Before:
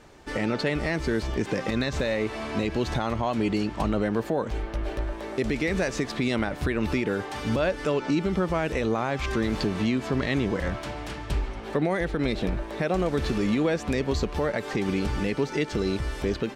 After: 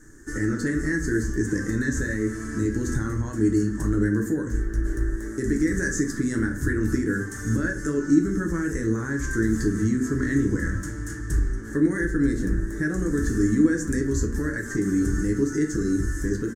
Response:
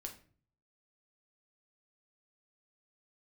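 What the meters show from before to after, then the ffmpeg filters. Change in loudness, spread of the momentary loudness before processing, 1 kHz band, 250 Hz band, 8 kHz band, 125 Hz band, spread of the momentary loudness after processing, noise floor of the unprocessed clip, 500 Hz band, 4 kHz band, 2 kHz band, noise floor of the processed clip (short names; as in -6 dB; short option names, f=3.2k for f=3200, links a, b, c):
+2.5 dB, 5 LU, -9.5 dB, +4.5 dB, +9.0 dB, +3.5 dB, 6 LU, -38 dBFS, -3.0 dB, under -10 dB, +2.0 dB, -34 dBFS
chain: -filter_complex "[0:a]firequalizer=gain_entry='entry(130,0);entry(180,-5);entry(290,4);entry(660,-26);entry(1700,5);entry(2400,-26);entry(4100,-18);entry(6500,9);entry(11000,5)':delay=0.05:min_phase=1[a];[1:a]atrim=start_sample=2205[b];[a][b]afir=irnorm=-1:irlink=0,volume=6.5dB"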